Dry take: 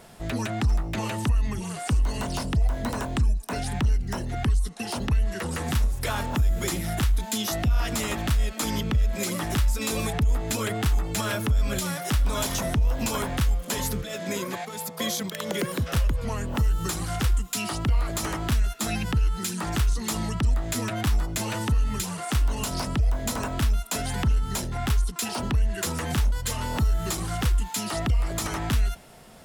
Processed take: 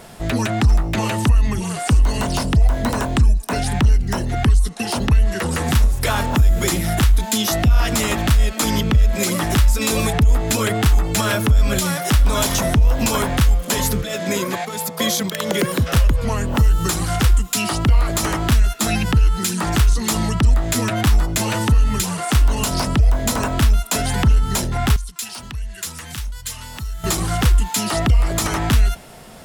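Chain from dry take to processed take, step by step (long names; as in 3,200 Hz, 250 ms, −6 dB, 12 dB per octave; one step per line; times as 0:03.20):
0:24.96–0:27.04: guitar amp tone stack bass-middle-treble 5-5-5
level +8.5 dB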